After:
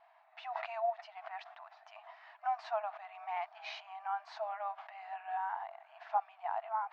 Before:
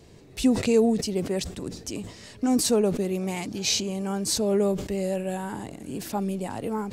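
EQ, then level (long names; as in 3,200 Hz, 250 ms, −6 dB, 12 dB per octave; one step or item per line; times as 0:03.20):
linear-phase brick-wall high-pass 630 Hz
low-pass filter 1,400 Hz 12 dB per octave
high-frequency loss of the air 230 metres
+2.5 dB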